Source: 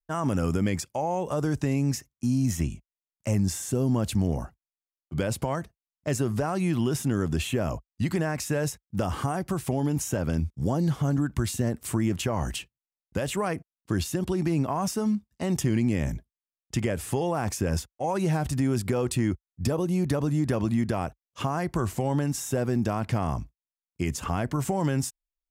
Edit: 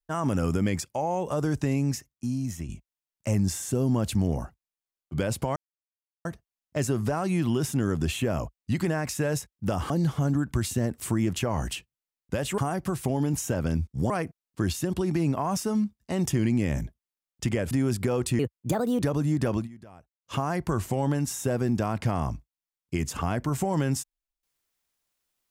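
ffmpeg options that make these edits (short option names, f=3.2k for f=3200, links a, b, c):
-filter_complex "[0:a]asplit=11[a][b][c][d][e][f][g][h][i][j][k];[a]atrim=end=2.69,asetpts=PTS-STARTPTS,afade=t=out:st=1.73:d=0.96:silence=0.334965[l];[b]atrim=start=2.69:end=5.56,asetpts=PTS-STARTPTS,afade=t=in:d=0.004:c=hsin:silence=0.334965,afade=t=out:st=2.866:d=0.004:c=hsin,apad=pad_dur=0.69[m];[c]atrim=start=5.56:end=9.212,asetpts=PTS-STARTPTS,afade=t=in:d=0.004:c=hsin[n];[d]atrim=start=10.728:end=13.412[o];[e]atrim=start=9.208:end=10.732[p];[f]atrim=start=13.408:end=17.022[q];[g]atrim=start=18.558:end=19.244[r];[h]atrim=start=19.24:end=20.09,asetpts=PTS-STARTPTS,asetrate=59535,aresample=44100[s];[i]atrim=start=20.086:end=20.75,asetpts=PTS-STARTPTS,afade=t=out:st=0.514:d=0.15:c=qsin:silence=0.0944061[t];[j]atrim=start=20.75:end=21.28,asetpts=PTS-STARTPTS,volume=-20.5dB[u];[k]atrim=start=21.28,asetpts=PTS-STARTPTS,afade=t=in:d=0.15:c=qsin:silence=0.0944061[v];[l][m][n]concat=n=3:v=0:a=1[w];[w][o]acrossfade=d=0.004:c1=hsin:c2=hsin[x];[x][p]acrossfade=d=0.004:c1=hsin:c2=hsin[y];[y][q]acrossfade=d=0.004:c1=hsin:c2=hsin[z];[z][r]acrossfade=d=0.004:c1=hsin:c2=hsin[aa];[aa][s]acrossfade=d=0.004:c1=hsin:c2=hsin[ab];[t][u][v]concat=n=3:v=0:a=1[ac];[ab][ac]acrossfade=d=0.004:c1=hsin:c2=hsin"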